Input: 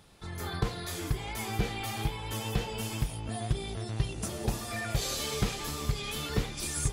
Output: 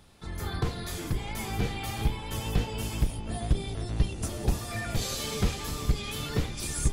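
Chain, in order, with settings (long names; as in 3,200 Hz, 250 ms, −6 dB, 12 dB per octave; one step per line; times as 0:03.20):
sub-octave generator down 1 octave, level +2 dB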